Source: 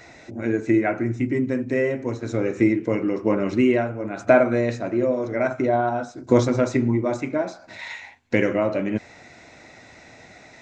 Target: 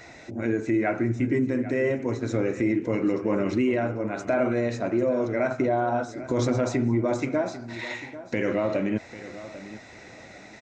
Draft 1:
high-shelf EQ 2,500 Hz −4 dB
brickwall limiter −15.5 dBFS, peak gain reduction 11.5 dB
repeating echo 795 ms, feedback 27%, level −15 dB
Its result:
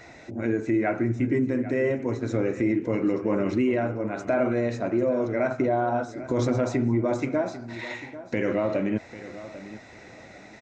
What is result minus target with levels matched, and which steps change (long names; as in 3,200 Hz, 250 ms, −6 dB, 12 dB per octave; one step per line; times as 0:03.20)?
4,000 Hz band −3.0 dB
remove: high-shelf EQ 2,500 Hz −4 dB